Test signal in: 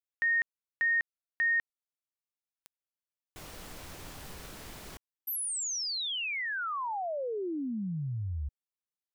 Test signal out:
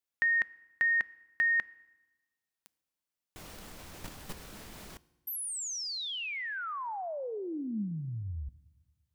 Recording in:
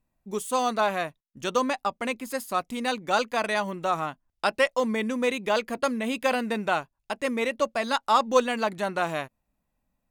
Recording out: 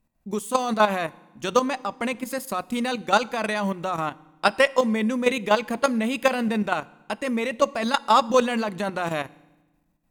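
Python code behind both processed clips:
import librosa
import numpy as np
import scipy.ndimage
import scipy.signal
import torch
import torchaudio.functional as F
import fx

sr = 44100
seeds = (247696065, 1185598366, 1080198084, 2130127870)

y = fx.level_steps(x, sr, step_db=11)
y = fx.peak_eq(y, sr, hz=210.0, db=5.5, octaves=0.27)
y = fx.rev_fdn(y, sr, rt60_s=1.1, lf_ratio=1.4, hf_ratio=0.9, size_ms=19.0, drr_db=19.5)
y = y * librosa.db_to_amplitude(7.0)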